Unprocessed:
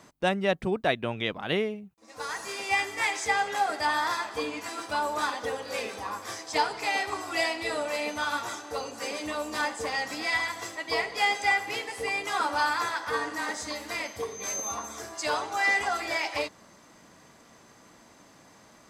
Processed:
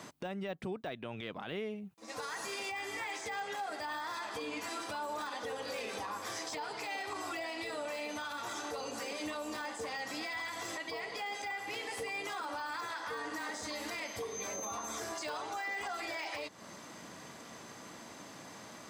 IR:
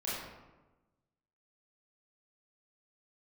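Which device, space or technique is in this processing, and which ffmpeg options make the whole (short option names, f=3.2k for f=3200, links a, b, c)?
broadcast voice chain: -af "highpass=94,deesser=0.95,acompressor=threshold=-40dB:ratio=5,equalizer=f=3.3k:t=o:w=0.77:g=2,alimiter=level_in=12dB:limit=-24dB:level=0:latency=1:release=32,volume=-12dB,volume=5dB"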